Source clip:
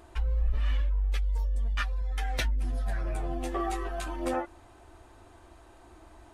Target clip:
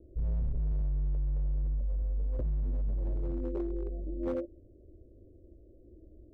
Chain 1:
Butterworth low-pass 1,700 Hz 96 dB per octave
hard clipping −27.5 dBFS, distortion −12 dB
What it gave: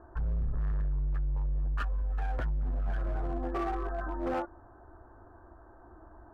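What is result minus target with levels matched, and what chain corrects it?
2,000 Hz band +20.0 dB
Butterworth low-pass 580 Hz 96 dB per octave
hard clipping −27.5 dBFS, distortion −12 dB

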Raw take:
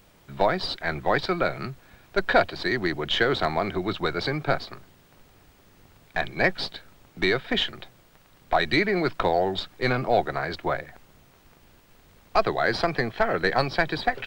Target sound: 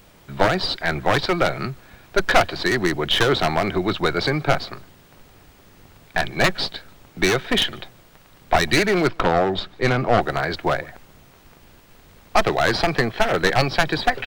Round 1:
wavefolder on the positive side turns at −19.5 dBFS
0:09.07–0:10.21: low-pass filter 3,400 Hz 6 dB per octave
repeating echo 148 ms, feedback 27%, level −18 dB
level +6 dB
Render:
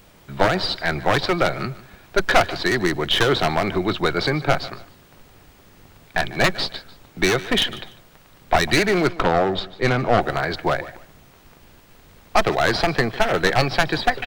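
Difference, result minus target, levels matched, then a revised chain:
echo-to-direct +12 dB
wavefolder on the positive side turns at −19.5 dBFS
0:09.07–0:10.21: low-pass filter 3,400 Hz 6 dB per octave
repeating echo 148 ms, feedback 27%, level −29.5 dB
level +6 dB

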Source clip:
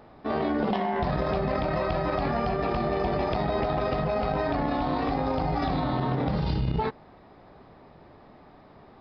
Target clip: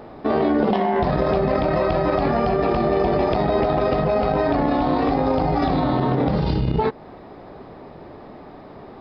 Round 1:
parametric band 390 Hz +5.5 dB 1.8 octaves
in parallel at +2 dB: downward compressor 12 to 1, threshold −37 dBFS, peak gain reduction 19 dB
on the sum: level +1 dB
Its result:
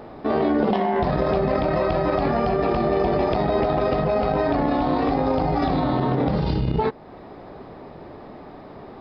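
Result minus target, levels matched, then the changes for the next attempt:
downward compressor: peak gain reduction +7 dB
change: downward compressor 12 to 1, threshold −29.5 dBFS, peak gain reduction 12 dB

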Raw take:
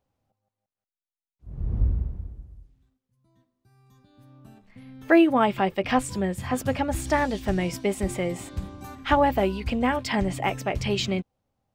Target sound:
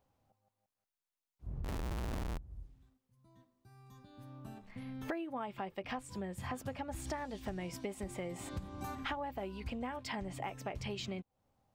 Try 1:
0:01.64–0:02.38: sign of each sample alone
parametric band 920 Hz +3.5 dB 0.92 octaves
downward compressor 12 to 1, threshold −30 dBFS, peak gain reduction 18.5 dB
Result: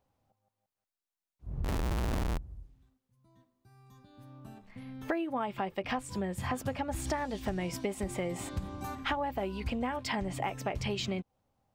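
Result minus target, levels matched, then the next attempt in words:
downward compressor: peak gain reduction −7 dB
0:01.64–0:02.38: sign of each sample alone
parametric band 920 Hz +3.5 dB 0.92 octaves
downward compressor 12 to 1, threshold −37.5 dBFS, peak gain reduction 25.5 dB

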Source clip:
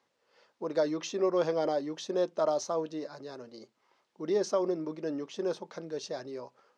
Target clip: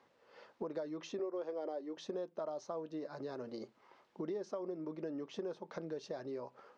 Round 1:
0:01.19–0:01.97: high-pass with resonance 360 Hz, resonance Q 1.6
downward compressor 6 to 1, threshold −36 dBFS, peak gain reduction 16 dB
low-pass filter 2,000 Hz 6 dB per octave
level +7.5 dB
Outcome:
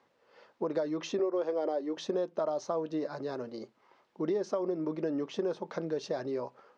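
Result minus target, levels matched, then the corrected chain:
downward compressor: peak gain reduction −9 dB
0:01.19–0:01.97: high-pass with resonance 360 Hz, resonance Q 1.6
downward compressor 6 to 1, threshold −47 dBFS, peak gain reduction 25 dB
low-pass filter 2,000 Hz 6 dB per octave
level +7.5 dB

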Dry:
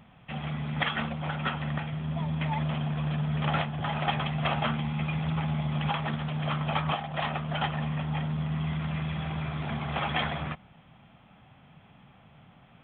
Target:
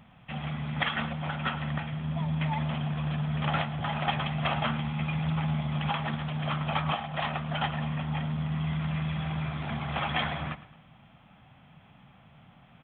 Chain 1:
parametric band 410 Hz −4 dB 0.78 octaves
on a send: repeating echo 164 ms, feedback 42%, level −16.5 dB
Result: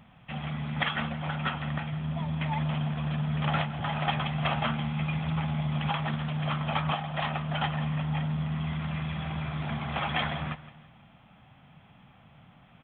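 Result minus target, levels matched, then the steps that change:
echo 55 ms late
change: repeating echo 109 ms, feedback 42%, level −16.5 dB

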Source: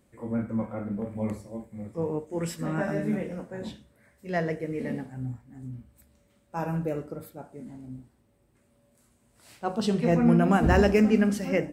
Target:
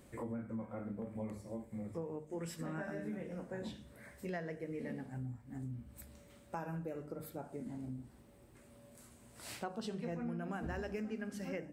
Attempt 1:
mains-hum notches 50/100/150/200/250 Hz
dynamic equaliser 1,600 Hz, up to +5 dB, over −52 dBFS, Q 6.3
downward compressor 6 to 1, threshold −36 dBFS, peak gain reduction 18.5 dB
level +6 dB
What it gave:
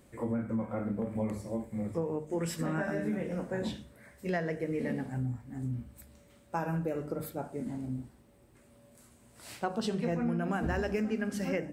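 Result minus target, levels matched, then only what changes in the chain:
downward compressor: peak gain reduction −9 dB
change: downward compressor 6 to 1, threshold −47 dBFS, peak gain reduction 28 dB

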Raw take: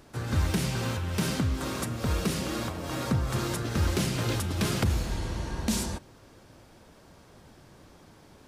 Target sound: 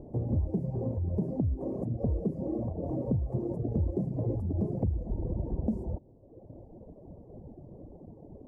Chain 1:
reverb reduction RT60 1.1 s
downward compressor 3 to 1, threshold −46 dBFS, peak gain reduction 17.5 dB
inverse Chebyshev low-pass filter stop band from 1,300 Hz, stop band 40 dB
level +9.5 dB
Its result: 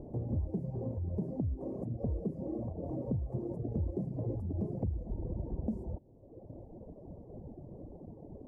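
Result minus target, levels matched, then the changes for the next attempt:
downward compressor: peak gain reduction +5 dB
change: downward compressor 3 to 1, threshold −38.5 dBFS, peak gain reduction 12.5 dB

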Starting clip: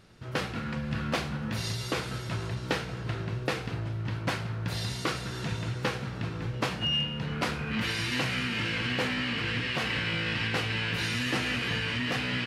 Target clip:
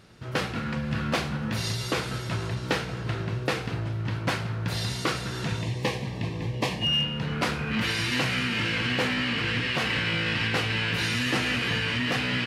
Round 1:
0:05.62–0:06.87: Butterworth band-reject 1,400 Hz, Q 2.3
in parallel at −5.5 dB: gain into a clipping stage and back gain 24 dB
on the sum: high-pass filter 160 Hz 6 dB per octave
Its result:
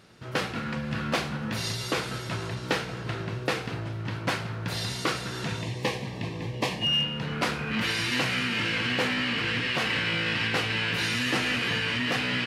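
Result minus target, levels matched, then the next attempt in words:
125 Hz band −3.0 dB
0:05.62–0:06.87: Butterworth band-reject 1,400 Hz, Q 2.3
in parallel at −5.5 dB: gain into a clipping stage and back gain 24 dB
on the sum: high-pass filter 46 Hz 6 dB per octave

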